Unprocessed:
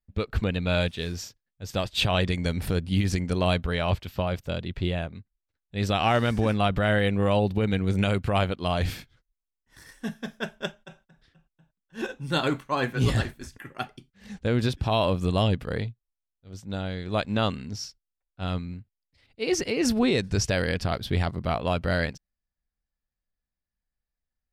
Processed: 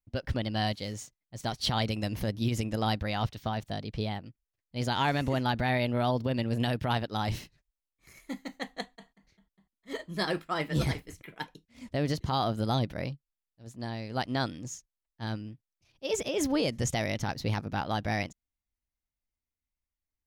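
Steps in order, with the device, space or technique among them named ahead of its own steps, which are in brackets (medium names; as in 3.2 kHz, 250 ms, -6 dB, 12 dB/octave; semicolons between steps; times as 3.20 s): nightcore (tape speed +21%); trim -5 dB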